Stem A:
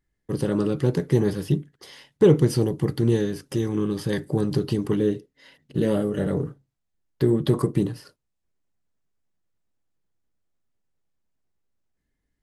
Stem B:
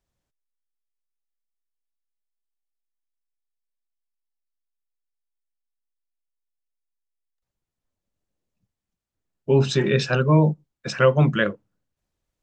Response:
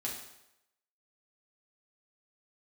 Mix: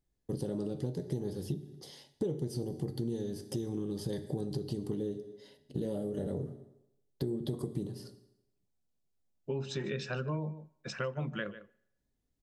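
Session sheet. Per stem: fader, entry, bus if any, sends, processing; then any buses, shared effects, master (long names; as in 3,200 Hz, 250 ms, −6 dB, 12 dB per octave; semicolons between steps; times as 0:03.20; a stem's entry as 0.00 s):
−6.0 dB, 0.00 s, send −9 dB, no echo send, flat-topped bell 1,700 Hz −11 dB
−12.0 dB, 0.00 s, send −22.5 dB, echo send −18 dB, no processing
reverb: on, RT60 0.85 s, pre-delay 4 ms
echo: single-tap delay 150 ms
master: downward compressor 6 to 1, threshold −32 dBFS, peak gain reduction 16 dB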